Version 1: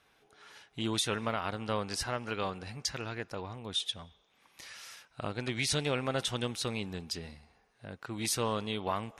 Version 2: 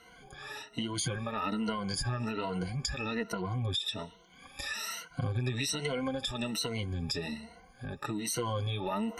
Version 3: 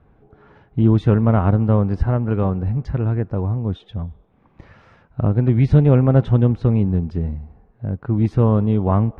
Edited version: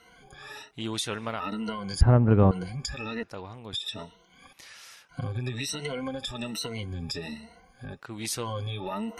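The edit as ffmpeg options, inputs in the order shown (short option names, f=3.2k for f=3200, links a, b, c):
-filter_complex "[0:a]asplit=4[a][b][c][d];[1:a]asplit=6[e][f][g][h][i][j];[e]atrim=end=0.712[k];[a]atrim=start=0.708:end=1.402[l];[f]atrim=start=1.398:end=2.012[m];[2:a]atrim=start=2.008:end=2.512[n];[g]atrim=start=2.508:end=3.232[o];[b]atrim=start=3.228:end=3.732[p];[h]atrim=start=3.728:end=4.532[q];[c]atrim=start=4.528:end=5.092[r];[i]atrim=start=5.088:end=8.02[s];[d]atrim=start=7.92:end=8.48[t];[j]atrim=start=8.38[u];[k][l]acrossfade=d=0.004:c1=hsin:c2=hsin[v];[v][m]acrossfade=d=0.004:c1=hsin:c2=hsin[w];[w][n]acrossfade=d=0.004:c1=hsin:c2=hsin[x];[x][o]acrossfade=d=0.004:c1=hsin:c2=hsin[y];[y][p]acrossfade=d=0.004:c1=hsin:c2=hsin[z];[z][q]acrossfade=d=0.004:c1=hsin:c2=hsin[aa];[aa][r]acrossfade=d=0.004:c1=hsin:c2=hsin[ab];[ab][s]acrossfade=d=0.004:c1=hsin:c2=hsin[ac];[ac][t]acrossfade=d=0.1:c1=tri:c2=tri[ad];[ad][u]acrossfade=d=0.1:c1=tri:c2=tri"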